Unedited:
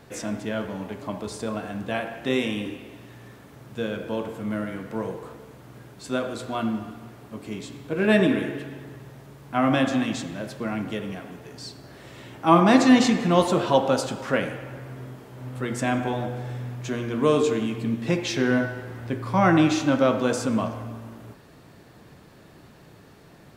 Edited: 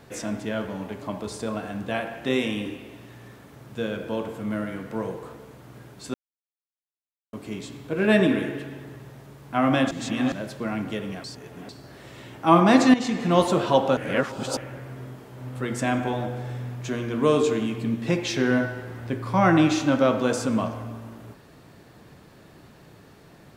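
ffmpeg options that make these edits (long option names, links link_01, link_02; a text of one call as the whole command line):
ffmpeg -i in.wav -filter_complex "[0:a]asplit=10[link_01][link_02][link_03][link_04][link_05][link_06][link_07][link_08][link_09][link_10];[link_01]atrim=end=6.14,asetpts=PTS-STARTPTS,afade=type=out:start_time=6.136:duration=0.004:curve=hsin[link_11];[link_02]atrim=start=6.14:end=7.33,asetpts=PTS-STARTPTS,volume=0[link_12];[link_03]atrim=start=7.33:end=9.912,asetpts=PTS-STARTPTS,afade=type=in:duration=0.004:curve=hsin[link_13];[link_04]atrim=start=9.908:end=10.322,asetpts=PTS-STARTPTS,areverse[link_14];[link_05]atrim=start=10.318:end=11.242[link_15];[link_06]atrim=start=11.238:end=11.692,asetpts=PTS-STARTPTS,areverse[link_16];[link_07]atrim=start=11.688:end=12.94,asetpts=PTS-STARTPTS,afade=type=out:start_time=1.248:duration=0.004:curve=hsin:silence=0.223872[link_17];[link_08]atrim=start=12.94:end=13.972,asetpts=PTS-STARTPTS,afade=type=in:duration=0.41:silence=0.223872[link_18];[link_09]atrim=start=13.968:end=14.572,asetpts=PTS-STARTPTS,areverse[link_19];[link_10]atrim=start=14.568[link_20];[link_11][link_12][link_13]concat=n=3:v=0:a=1[link_21];[link_21][link_14]acrossfade=duration=0.004:curve1=hsin:curve2=hsin[link_22];[link_22][link_15]acrossfade=duration=0.004:curve1=hsin:curve2=hsin[link_23];[link_23][link_16]acrossfade=duration=0.004:curve1=hsin:curve2=hsin[link_24];[link_17][link_18]concat=n=2:v=0:a=1[link_25];[link_24][link_25]acrossfade=duration=0.004:curve1=hsin:curve2=hsin[link_26];[link_26][link_19]acrossfade=duration=0.004:curve1=hsin:curve2=hsin[link_27];[link_27][link_20]acrossfade=duration=0.004:curve1=hsin:curve2=hsin" out.wav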